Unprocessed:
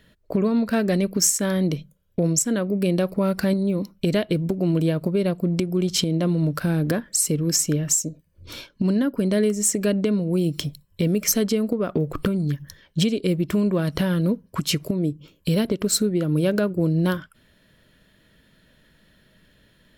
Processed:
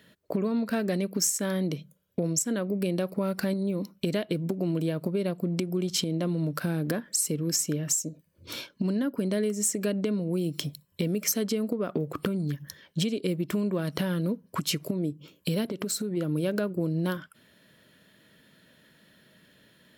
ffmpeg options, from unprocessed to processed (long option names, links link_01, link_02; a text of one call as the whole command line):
ffmpeg -i in.wav -filter_complex "[0:a]asplit=3[link_01][link_02][link_03];[link_01]afade=type=out:start_time=15.69:duration=0.02[link_04];[link_02]acompressor=threshold=-24dB:ratio=6:attack=3.2:release=140:knee=1:detection=peak,afade=type=in:start_time=15.69:duration=0.02,afade=type=out:start_time=16.16:duration=0.02[link_05];[link_03]afade=type=in:start_time=16.16:duration=0.02[link_06];[link_04][link_05][link_06]amix=inputs=3:normalize=0,highpass=140,highshelf=frequency=11000:gain=4,acompressor=threshold=-29dB:ratio=2" out.wav